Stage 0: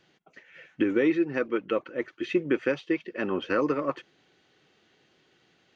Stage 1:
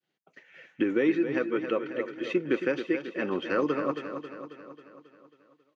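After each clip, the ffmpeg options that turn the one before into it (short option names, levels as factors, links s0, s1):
-filter_complex "[0:a]agate=range=0.0224:threshold=0.002:ratio=3:detection=peak,highpass=110,asplit=2[s0][s1];[s1]aecho=0:1:271|542|813|1084|1355|1626|1897:0.355|0.202|0.115|0.0657|0.0375|0.0213|0.0122[s2];[s0][s2]amix=inputs=2:normalize=0,volume=0.841"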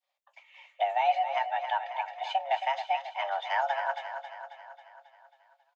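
-filter_complex "[0:a]afreqshift=400,asplit=2[s0][s1];[s1]adelay=18,volume=0.211[s2];[s0][s2]amix=inputs=2:normalize=0,volume=0.794"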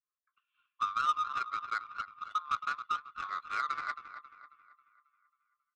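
-filter_complex "[0:a]acrossover=split=940|1700|2300[s0][s1][s2][s3];[s2]acompressor=threshold=0.002:ratio=6[s4];[s0][s1][s4][s3]amix=inputs=4:normalize=0,afreqshift=500,adynamicsmooth=sensitivity=1.5:basefreq=770,volume=0.668"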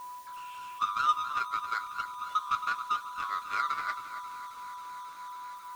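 -af "aeval=exprs='val(0)+0.5*0.00447*sgn(val(0))':c=same,aeval=exprs='val(0)+0.00708*sin(2*PI*990*n/s)':c=same,flanger=delay=8.9:depth=1.6:regen=-51:speed=0.93:shape=triangular,volume=2"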